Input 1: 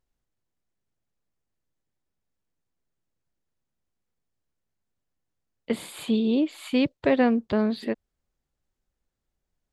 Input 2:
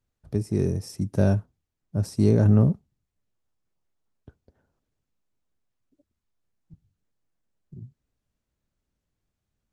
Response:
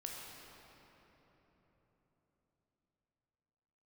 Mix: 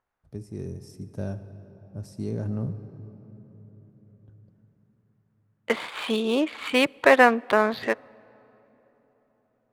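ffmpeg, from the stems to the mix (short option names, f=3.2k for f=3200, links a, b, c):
-filter_complex "[0:a]highpass=f=510:p=1,equalizer=f=1.3k:t=o:w=2.7:g=14.5,adynamicsmooth=sensitivity=6:basefreq=2k,volume=0dB,asplit=2[a][b];[b]volume=-23.5dB[c];[1:a]volume=-13.5dB,asplit=2[d][e];[e]volume=-5dB[f];[2:a]atrim=start_sample=2205[g];[c][f]amix=inputs=2:normalize=0[h];[h][g]afir=irnorm=-1:irlink=0[i];[a][d][i]amix=inputs=3:normalize=0"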